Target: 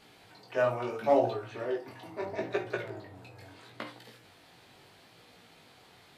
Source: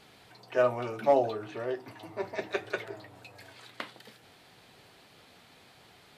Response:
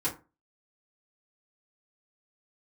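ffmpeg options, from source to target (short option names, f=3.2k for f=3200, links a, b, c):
-filter_complex "[0:a]asplit=2[a][b];[1:a]atrim=start_sample=2205,adelay=40[c];[b][c]afir=irnorm=-1:irlink=0,volume=-15dB[d];[a][d]amix=inputs=2:normalize=0,flanger=delay=16.5:depth=6.5:speed=0.75,asettb=1/sr,asplit=3[e][f][g];[e]atrim=end=2.254[h];[f]atrim=start=2.25:end=3.87,asetpts=PTS-STARTPTS,afade=t=in:d=0.004:c=qsin,afade=t=out:st=1.616:d=0.004:c=qsin,tiltshelf=f=910:g=4[i];[g]atrim=start=3.866[j];[h][i]acrossfade=d=0.004:c1=hsin:c2=qsin[k];[k][j]acrossfade=d=0.004:c1=qsin:c2=hsin,volume=2dB"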